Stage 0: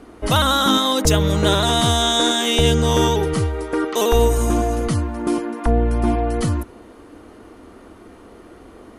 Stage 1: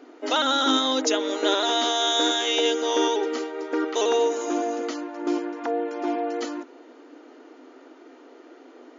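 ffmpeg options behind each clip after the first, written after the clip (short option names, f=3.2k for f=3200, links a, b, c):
-af "afftfilt=real='re*between(b*sr/4096,240,7200)':imag='im*between(b*sr/4096,240,7200)':win_size=4096:overlap=0.75,bandreject=f=1.1k:w=8.7,volume=-4dB"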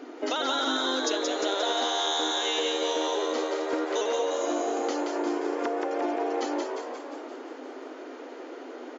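-filter_complex "[0:a]acompressor=threshold=-33dB:ratio=5,asplit=2[a][b];[b]asplit=8[c][d][e][f][g][h][i][j];[c]adelay=176,afreqshift=87,volume=-4dB[k];[d]adelay=352,afreqshift=174,volume=-8.7dB[l];[e]adelay=528,afreqshift=261,volume=-13.5dB[m];[f]adelay=704,afreqshift=348,volume=-18.2dB[n];[g]adelay=880,afreqshift=435,volume=-22.9dB[o];[h]adelay=1056,afreqshift=522,volume=-27.7dB[p];[i]adelay=1232,afreqshift=609,volume=-32.4dB[q];[j]adelay=1408,afreqshift=696,volume=-37.1dB[r];[k][l][m][n][o][p][q][r]amix=inputs=8:normalize=0[s];[a][s]amix=inputs=2:normalize=0,volume=5dB"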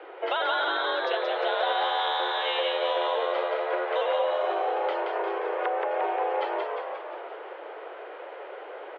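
-af "highpass=f=410:t=q:w=0.5412,highpass=f=410:t=q:w=1.307,lowpass=f=3.2k:t=q:w=0.5176,lowpass=f=3.2k:t=q:w=0.7071,lowpass=f=3.2k:t=q:w=1.932,afreqshift=52,volume=3dB"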